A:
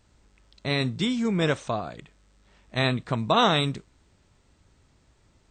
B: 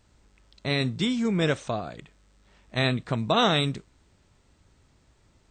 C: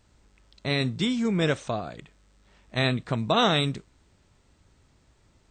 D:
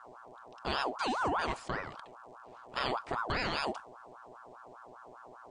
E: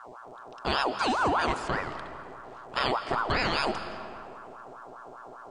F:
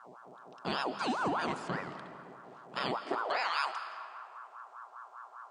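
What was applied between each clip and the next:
dynamic equaliser 1,000 Hz, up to −5 dB, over −39 dBFS
no processing that can be heard
hum with harmonics 120 Hz, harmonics 4, −46 dBFS −6 dB per octave; brickwall limiter −17 dBFS, peak gain reduction 7.5 dB; ring modulator whose carrier an LFO sweeps 880 Hz, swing 45%, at 5 Hz; level −3.5 dB
convolution reverb RT60 2.3 s, pre-delay 125 ms, DRR 10.5 dB; level +6 dB
high-pass filter sweep 170 Hz → 1,100 Hz, 0:02.94–0:03.51; level −7.5 dB

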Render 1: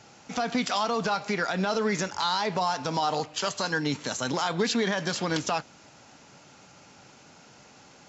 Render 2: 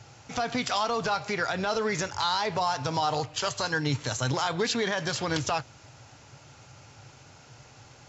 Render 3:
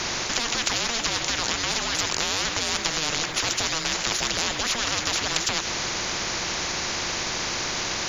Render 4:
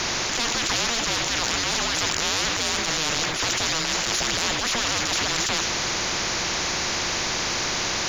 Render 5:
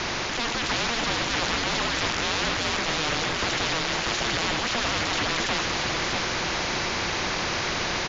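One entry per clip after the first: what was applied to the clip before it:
low shelf with overshoot 150 Hz +7.5 dB, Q 3
frequency shifter −470 Hz; every bin compressed towards the loudest bin 10 to 1; level +9 dB
transient designer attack −12 dB, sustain +5 dB; in parallel at −7.5 dB: soft clipping −22.5 dBFS, distortion −13 dB
high-frequency loss of the air 140 metres; single-tap delay 640 ms −4.5 dB

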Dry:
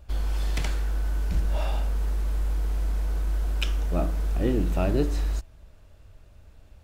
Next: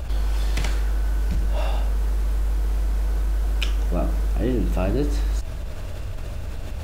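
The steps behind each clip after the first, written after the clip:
envelope flattener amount 70%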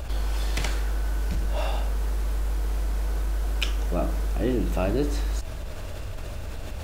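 bass and treble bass −4 dB, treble +1 dB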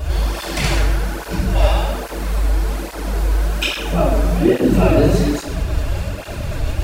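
rectangular room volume 480 cubic metres, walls mixed, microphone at 3.2 metres
through-zero flanger with one copy inverted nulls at 1.2 Hz, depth 6 ms
level +6.5 dB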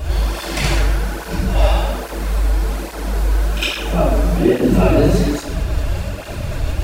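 echo ahead of the sound 56 ms −12.5 dB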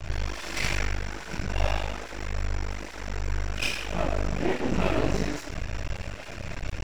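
Chebyshev low-pass with heavy ripple 7,600 Hz, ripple 9 dB
half-wave rectification

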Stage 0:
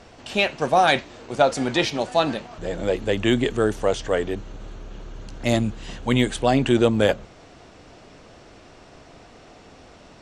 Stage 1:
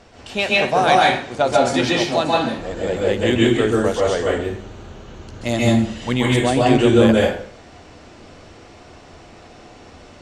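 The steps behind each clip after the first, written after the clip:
dense smooth reverb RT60 0.53 s, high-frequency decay 0.8×, pre-delay 120 ms, DRR −4 dB
level −1 dB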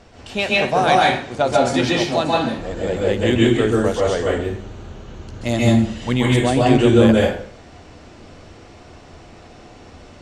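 low-shelf EQ 220 Hz +4.5 dB
level −1 dB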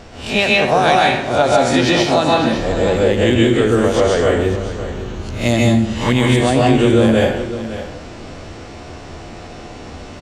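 peak hold with a rise ahead of every peak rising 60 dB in 0.34 s
downward compressor 3 to 1, threshold −19 dBFS, peak gain reduction 9.5 dB
single-tap delay 558 ms −13 dB
level +7.5 dB

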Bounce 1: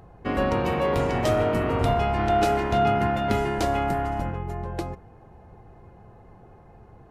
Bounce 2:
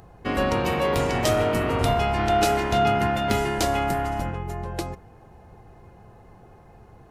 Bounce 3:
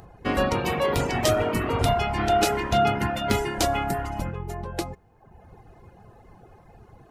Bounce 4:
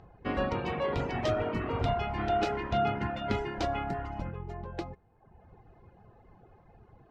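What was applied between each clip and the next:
high-shelf EQ 2,900 Hz +10 dB
reverb reduction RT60 0.96 s; level +1.5 dB
high-frequency loss of the air 200 metres; level −6.5 dB

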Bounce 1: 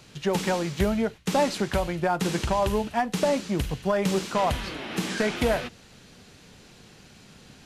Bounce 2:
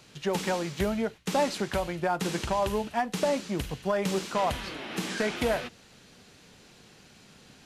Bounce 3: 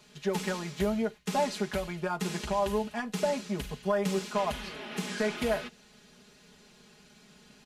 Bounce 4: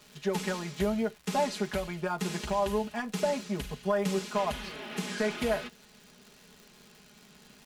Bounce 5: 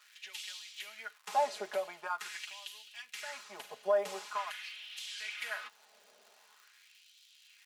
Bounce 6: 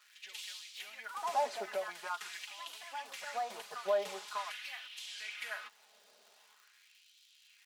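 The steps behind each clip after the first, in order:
low-shelf EQ 150 Hz −6 dB; level −2.5 dB
comb filter 4.8 ms, depth 92%; level −5.5 dB
surface crackle 220 per second −43 dBFS
auto-filter high-pass sine 0.45 Hz 580–3,300 Hz; level −6.5 dB
delay with pitch and tempo change per echo 95 ms, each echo +3 semitones, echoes 3, each echo −6 dB; level −2.5 dB

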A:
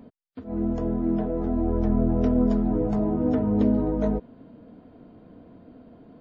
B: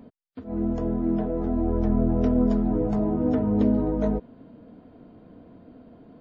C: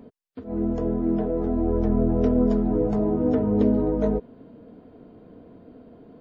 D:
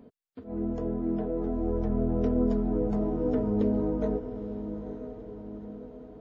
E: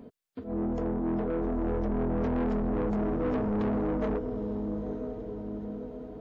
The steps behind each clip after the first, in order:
no processing that can be heard
parametric band 430 Hz +6 dB 0.47 octaves
feedback delay with all-pass diffusion 917 ms, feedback 54%, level −10.5 dB; level −6 dB
soft clipping −30 dBFS, distortion −8 dB; level +4.5 dB

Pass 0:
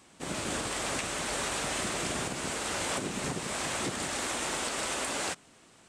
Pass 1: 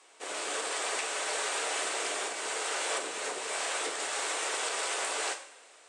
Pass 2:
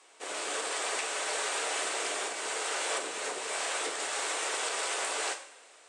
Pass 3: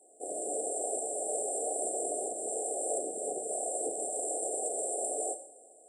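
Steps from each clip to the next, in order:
sub-octave generator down 1 octave, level −3 dB; elliptic band-pass filter 440–9,300 Hz, stop band 80 dB; coupled-rooms reverb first 0.53 s, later 3.3 s, from −21 dB, DRR 5 dB
no processing that can be heard
linear-phase brick-wall band-stop 790–7,200 Hz; level +3.5 dB

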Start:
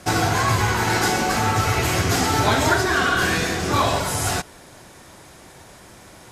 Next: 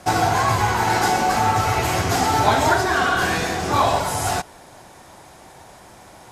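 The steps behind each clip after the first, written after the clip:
parametric band 800 Hz +8 dB 0.78 octaves
level −2 dB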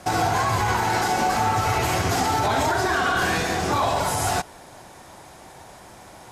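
brickwall limiter −13 dBFS, peak gain reduction 10 dB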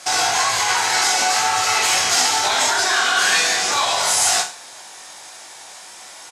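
meter weighting curve ITU-R 468
reverse bouncing-ball delay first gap 20 ms, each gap 1.15×, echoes 5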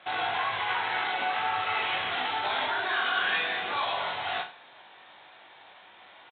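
downsampling to 8,000 Hz
level −9 dB

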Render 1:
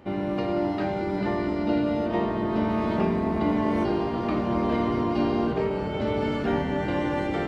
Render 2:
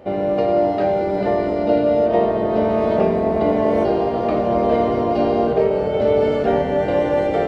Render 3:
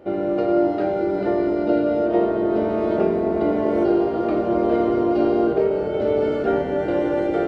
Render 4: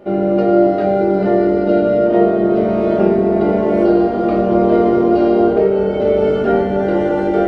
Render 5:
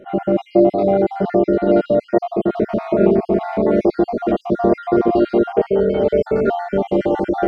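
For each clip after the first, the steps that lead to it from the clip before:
flat-topped bell 560 Hz +11 dB 1 octave; level +2.5 dB
hollow resonant body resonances 340/1,400 Hz, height 13 dB, ringing for 55 ms; level −6 dB
rectangular room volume 350 cubic metres, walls furnished, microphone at 1.3 metres; level +3.5 dB
time-frequency cells dropped at random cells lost 48%

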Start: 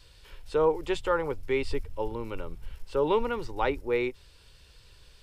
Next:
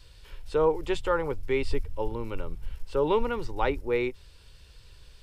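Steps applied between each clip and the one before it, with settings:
low-shelf EQ 140 Hz +5 dB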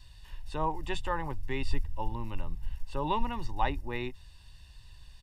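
comb filter 1.1 ms, depth 80%
level −4.5 dB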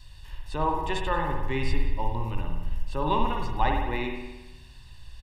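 single-tap delay 183 ms −21 dB
spring reverb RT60 1.1 s, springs 53 ms, chirp 50 ms, DRR 1.5 dB
level +3.5 dB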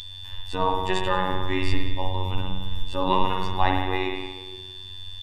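steady tone 3,500 Hz −33 dBFS
echo through a band-pass that steps 152 ms, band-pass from 2,500 Hz, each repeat −1.4 octaves, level −10 dB
phases set to zero 93.2 Hz
level +5.5 dB

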